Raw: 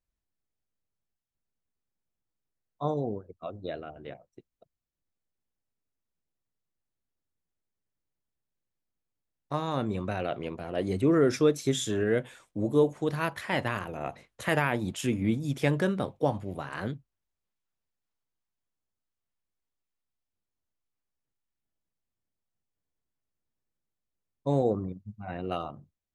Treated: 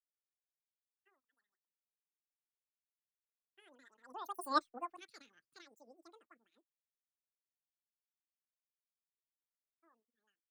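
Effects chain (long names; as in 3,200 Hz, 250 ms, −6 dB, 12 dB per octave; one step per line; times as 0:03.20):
spectral dynamics exaggerated over time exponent 1.5
source passing by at 0:11.41, 22 m/s, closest 1.5 metres
change of speed 2.49×
level +2 dB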